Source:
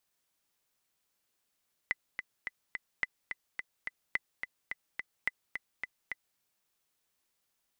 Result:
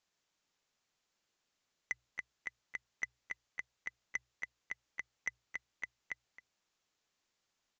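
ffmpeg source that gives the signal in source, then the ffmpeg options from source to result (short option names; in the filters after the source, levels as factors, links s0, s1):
-f lavfi -i "aevalsrc='pow(10,(-16-7*gte(mod(t,4*60/214),60/214))/20)*sin(2*PI*2010*mod(t,60/214))*exp(-6.91*mod(t,60/214)/0.03)':d=4.48:s=44100"
-filter_complex "[0:a]bandreject=f=60:t=h:w=6,bandreject=f=120:t=h:w=6,aresample=16000,asoftclip=type=tanh:threshold=0.0501,aresample=44100,asplit=2[s0][s1];[s1]adelay=268.2,volume=0.178,highshelf=f=4000:g=-6.04[s2];[s0][s2]amix=inputs=2:normalize=0"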